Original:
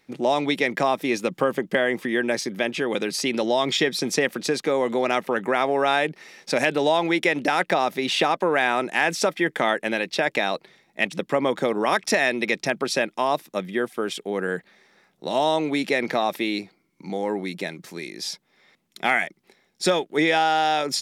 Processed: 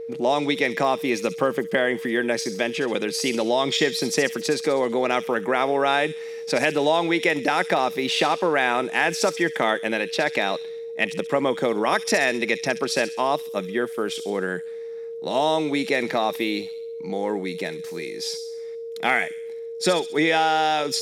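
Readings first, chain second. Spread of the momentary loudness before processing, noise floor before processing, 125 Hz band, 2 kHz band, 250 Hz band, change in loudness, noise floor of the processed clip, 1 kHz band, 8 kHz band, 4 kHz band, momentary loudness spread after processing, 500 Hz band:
9 LU, -66 dBFS, 0.0 dB, 0.0 dB, 0.0 dB, +0.5 dB, -34 dBFS, 0.0 dB, +1.0 dB, +0.5 dB, 10 LU, +1.0 dB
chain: whine 460 Hz -31 dBFS; thin delay 66 ms, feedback 53%, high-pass 4400 Hz, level -6 dB

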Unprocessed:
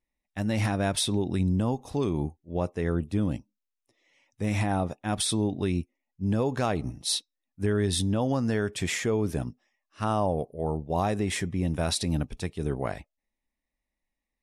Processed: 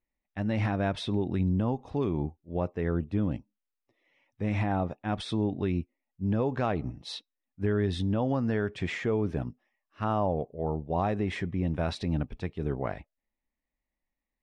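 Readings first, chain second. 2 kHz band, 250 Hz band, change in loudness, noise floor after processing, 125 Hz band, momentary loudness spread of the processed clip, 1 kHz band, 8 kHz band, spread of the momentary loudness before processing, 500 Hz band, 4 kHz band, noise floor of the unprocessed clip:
-2.5 dB, -1.5 dB, -2.0 dB, under -85 dBFS, -1.5 dB, 7 LU, -1.5 dB, under -20 dB, 7 LU, -1.5 dB, -9.0 dB, -85 dBFS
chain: LPF 2700 Hz 12 dB/oct; gain -1.5 dB

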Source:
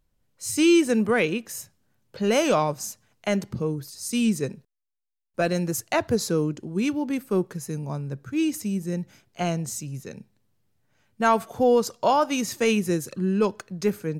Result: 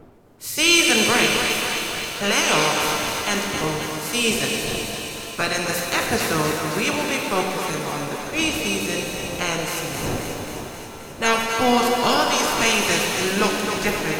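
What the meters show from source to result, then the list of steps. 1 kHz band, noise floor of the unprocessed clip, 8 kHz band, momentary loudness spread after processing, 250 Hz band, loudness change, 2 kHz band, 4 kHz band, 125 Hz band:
+5.5 dB, -71 dBFS, +10.0 dB, 10 LU, -1.5 dB, +4.5 dB, +11.5 dB, +14.0 dB, -0.5 dB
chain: spectral limiter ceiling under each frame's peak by 22 dB; wind noise 460 Hz -40 dBFS; on a send: thinning echo 0.265 s, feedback 69%, high-pass 370 Hz, level -7 dB; on the sum: shimmer reverb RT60 2.7 s, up +7 st, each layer -8 dB, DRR 1.5 dB

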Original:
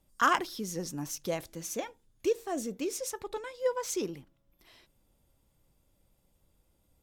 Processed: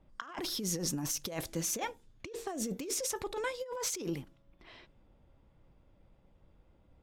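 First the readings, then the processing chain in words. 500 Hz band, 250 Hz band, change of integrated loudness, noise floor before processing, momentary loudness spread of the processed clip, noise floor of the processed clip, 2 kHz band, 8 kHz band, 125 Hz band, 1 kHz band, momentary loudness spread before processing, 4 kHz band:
-6.0 dB, -2.0 dB, -2.5 dB, -72 dBFS, 11 LU, -66 dBFS, -7.5 dB, +3.5 dB, +2.5 dB, -9.5 dB, 12 LU, +2.0 dB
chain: negative-ratio compressor -39 dBFS, ratio -1; low-pass opened by the level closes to 1900 Hz, open at -37.5 dBFS; gain +1.5 dB

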